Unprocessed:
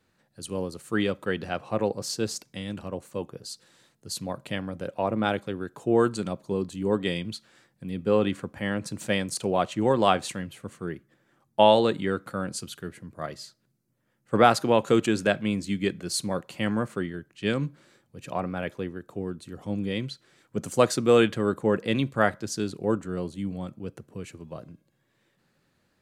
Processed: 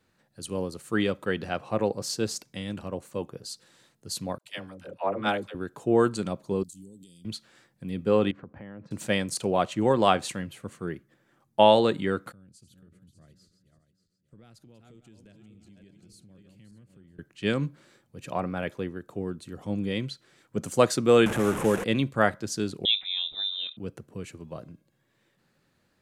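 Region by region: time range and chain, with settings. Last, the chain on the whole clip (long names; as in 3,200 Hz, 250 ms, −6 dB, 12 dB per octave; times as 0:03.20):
0:04.38–0:05.55: low-shelf EQ 250 Hz −10 dB + all-pass dispersion lows, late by 73 ms, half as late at 480 Hz + multiband upward and downward expander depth 70%
0:06.63–0:07.25: tilt shelving filter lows −9.5 dB, about 1,400 Hz + downward compressor 4 to 1, threshold −40 dBFS + Chebyshev band-stop filter 230–7,700 Hz
0:08.31–0:08.91: high-pass filter 44 Hz + downward compressor 4 to 1, threshold −38 dBFS + head-to-tape spacing loss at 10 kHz 43 dB
0:12.32–0:17.19: feedback delay that plays each chunk backwards 293 ms, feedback 53%, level −9.5 dB + guitar amp tone stack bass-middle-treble 10-0-1 + downward compressor 5 to 1, threshold −50 dBFS
0:21.26–0:21.84: linear delta modulator 64 kbit/s, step −25.5 dBFS + parametric band 4,500 Hz −14 dB 0.68 octaves + multiband upward and downward compressor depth 40%
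0:22.85–0:23.77: upward compression, threshold −33 dBFS + voice inversion scrambler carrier 3,800 Hz
whole clip: no processing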